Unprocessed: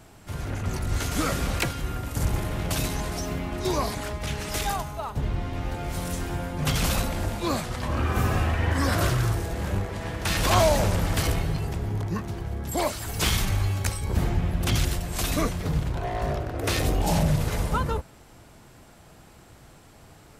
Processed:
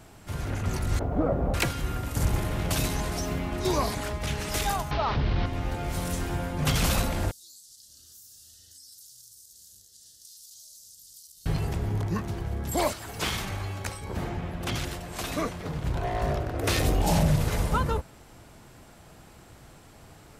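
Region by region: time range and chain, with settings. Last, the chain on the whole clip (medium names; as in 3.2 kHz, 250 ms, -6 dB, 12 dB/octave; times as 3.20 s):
0.99–1.54 s: resonant low-pass 670 Hz, resonance Q 2 + word length cut 12-bit, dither triangular
4.91–5.46 s: one-bit delta coder 32 kbps, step -32.5 dBFS + low-pass 4.5 kHz 24 dB/octave + level flattener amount 70%
7.31–11.46 s: inverse Chebyshev high-pass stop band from 2.5 kHz + compression, threshold -47 dBFS
12.93–15.84 s: high-pass 710 Hz 6 dB/octave + tilt EQ -2.5 dB/octave
whole clip: none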